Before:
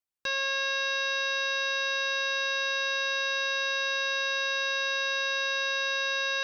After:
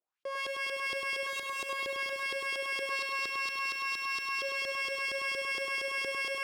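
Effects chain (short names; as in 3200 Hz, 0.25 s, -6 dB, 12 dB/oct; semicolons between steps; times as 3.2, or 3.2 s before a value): 1.27–1.69 spectral gain 280–3300 Hz +10 dB; 2.9–4.41 overdrive pedal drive 13 dB, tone 5200 Hz, clips at -16.5 dBFS; bell 1900 Hz -3.5 dB 0.49 oct; sine folder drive 16 dB, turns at -17 dBFS; LFO band-pass saw up 4.3 Hz 400–3400 Hz; on a send: thin delay 0.834 s, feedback 56%, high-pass 1700 Hz, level -14 dB; on the sum: limiter -23 dBFS, peak gain reduction 4 dB; lo-fi delay 0.1 s, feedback 80%, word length 9-bit, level -5 dB; gain -6.5 dB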